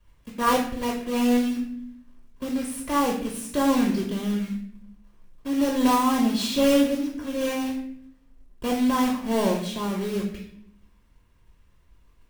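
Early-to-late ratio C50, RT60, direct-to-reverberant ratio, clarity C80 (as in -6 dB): 5.5 dB, 0.65 s, -1.5 dB, 8.5 dB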